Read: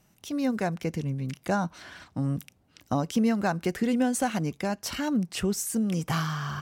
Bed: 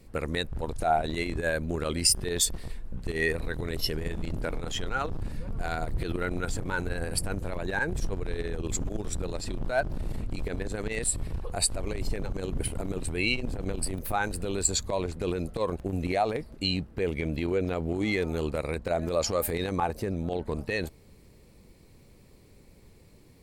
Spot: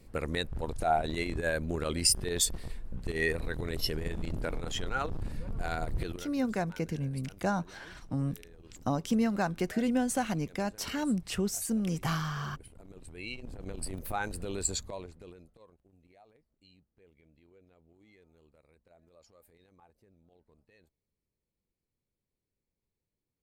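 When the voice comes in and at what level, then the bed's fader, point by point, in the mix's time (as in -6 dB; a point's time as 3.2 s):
5.95 s, -3.5 dB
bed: 6.04 s -2.5 dB
6.32 s -21.5 dB
12.69 s -21.5 dB
13.95 s -5.5 dB
14.72 s -5.5 dB
15.83 s -34 dB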